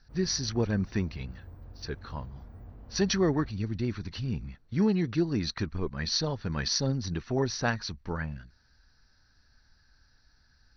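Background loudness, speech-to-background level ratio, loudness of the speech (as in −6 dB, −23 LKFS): −49.5 LKFS, 19.0 dB, −30.5 LKFS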